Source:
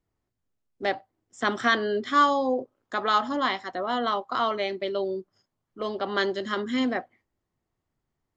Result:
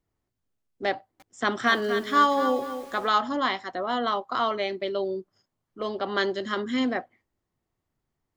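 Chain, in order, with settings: 0.95–3.12 lo-fi delay 0.246 s, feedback 35%, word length 7-bit, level -9 dB

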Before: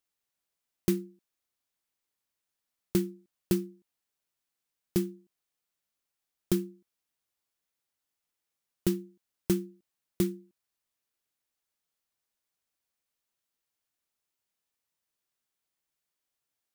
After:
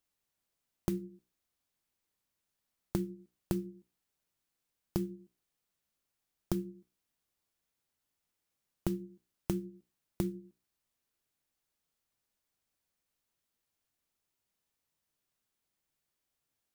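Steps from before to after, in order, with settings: low shelf 380 Hz +8 dB; notches 60/120/180/240/300/360/420/480/540 Hz; compressor 5:1, threshold -31 dBFS, peak gain reduction 13 dB

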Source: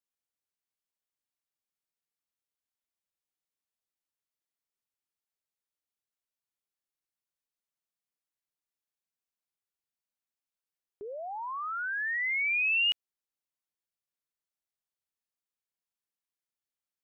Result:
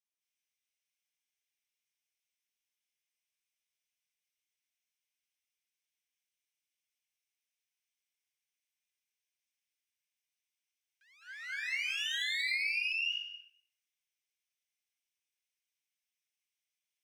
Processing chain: minimum comb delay 0.35 ms; rippled Chebyshev high-pass 1500 Hz, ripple 3 dB; high shelf 2000 Hz +11 dB; reverb RT60 0.65 s, pre-delay 0.2 s, DRR -8 dB; compressor 16:1, threshold -25 dBFS, peak gain reduction 15.5 dB; tilt -4 dB/oct

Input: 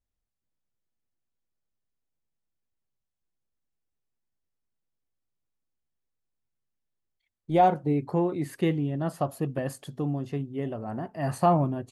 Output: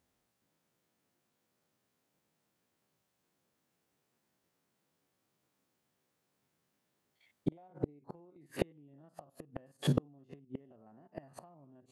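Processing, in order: stepped spectrum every 50 ms; HPF 160 Hz 12 dB/oct; in parallel at +1.5 dB: limiter -20.5 dBFS, peak gain reduction 9.5 dB; on the sum: compressor 20:1, threshold -29 dBFS, peak gain reduction 17 dB; high shelf 2100 Hz -6 dB; flipped gate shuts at -28 dBFS, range -36 dB; gain +11 dB

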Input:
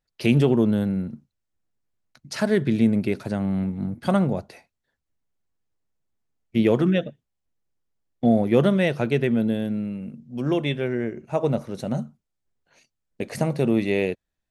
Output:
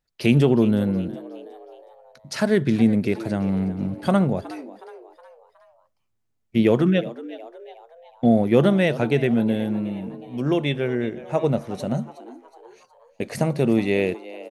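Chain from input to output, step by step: frequency-shifting echo 0.367 s, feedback 46%, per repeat +110 Hz, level -17 dB; gain +1.5 dB

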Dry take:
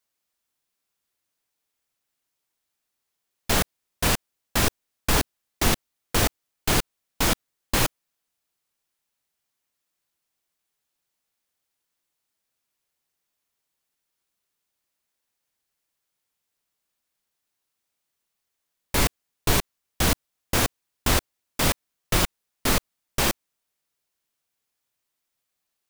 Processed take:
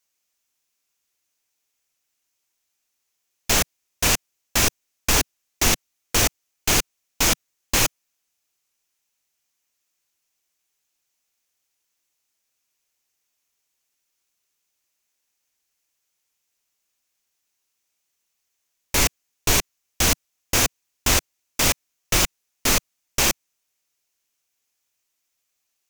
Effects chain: fifteen-band EQ 160 Hz -4 dB, 2500 Hz +5 dB, 6300 Hz +9 dB, 16000 Hz +5 dB

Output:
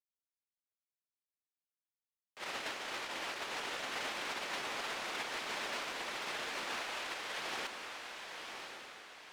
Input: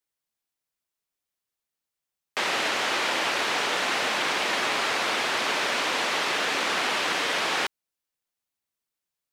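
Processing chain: 6.76–7.39 HPF 430 Hz 12 dB/oct; in parallel at -1 dB: limiter -22.5 dBFS, peak gain reduction 8.5 dB; on the sum: overloaded stage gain 19 dB; gate -19 dBFS, range -42 dB; on a send: diffused feedback echo 1.067 s, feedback 41%, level -5 dB; on the sum: gain +14.5 dB

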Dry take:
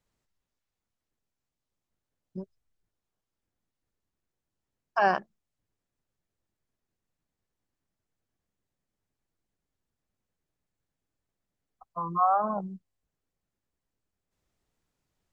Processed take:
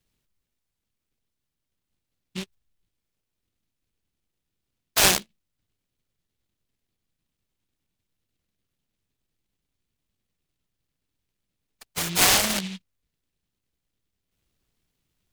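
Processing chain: noise-modulated delay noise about 3000 Hz, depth 0.37 ms; gain +4.5 dB

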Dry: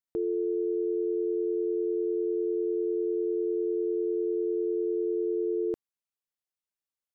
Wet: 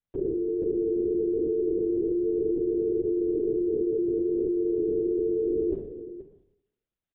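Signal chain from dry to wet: bell 240 Hz +14 dB 0.99 oct; limiter -26.5 dBFS, peak gain reduction 9.5 dB; doubler 40 ms -12 dB; echo 0.477 s -12 dB; Schroeder reverb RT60 0.82 s, combs from 25 ms, DRR 8.5 dB; LPC vocoder at 8 kHz whisper; gain +2 dB

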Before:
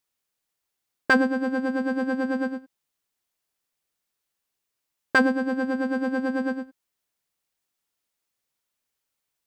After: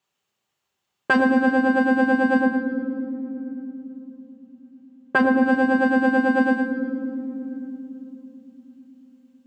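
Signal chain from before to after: 2.41–5.43 high shelf 2800 Hz -9.5 dB; limiter -18 dBFS, peak gain reduction 10 dB; reverb RT60 3.3 s, pre-delay 3 ms, DRR 3.5 dB

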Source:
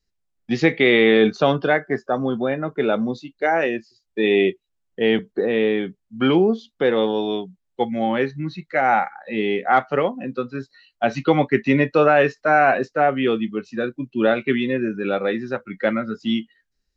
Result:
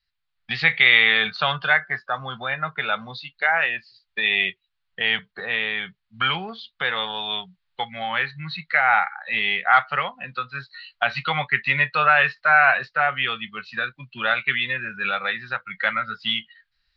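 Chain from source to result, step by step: recorder AGC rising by 12 dB/s; EQ curve 160 Hz 0 dB, 300 Hz -22 dB, 780 Hz +3 dB, 1300 Hz +12 dB, 4400 Hz +13 dB, 6300 Hz -11 dB; gain -7 dB

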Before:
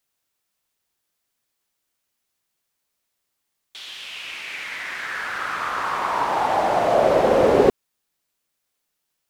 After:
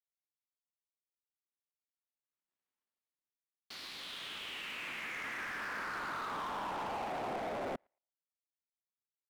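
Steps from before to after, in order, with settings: Doppler pass-by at 2.69, 9 m/s, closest 2.8 m; high shelf 4000 Hz -11.5 dB; overdrive pedal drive 24 dB, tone 1200 Hz, clips at -27 dBFS; formant shift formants +5 st; bell 230 Hz +9 dB 1.6 oct; soft clip -40 dBFS, distortion -7 dB; narrowing echo 0.113 s, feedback 49%, band-pass 770 Hz, level -20 dB; power-law curve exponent 2; gain +5.5 dB

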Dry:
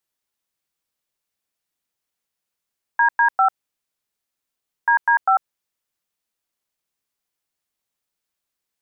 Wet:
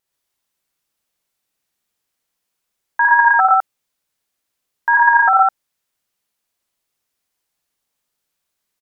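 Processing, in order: wow and flutter 26 cents; loudspeakers at several distances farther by 19 m -2 dB, 40 m 0 dB; gain +2 dB

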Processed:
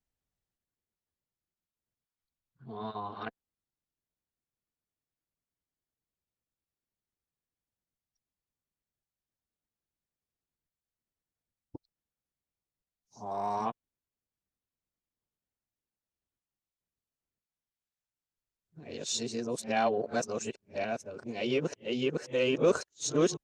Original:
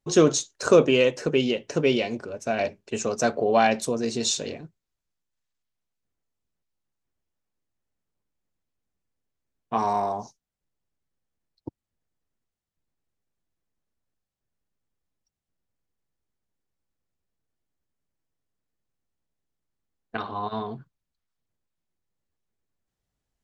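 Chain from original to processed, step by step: whole clip reversed; added harmonics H 5 -31 dB, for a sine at -5.5 dBFS; gain -9 dB

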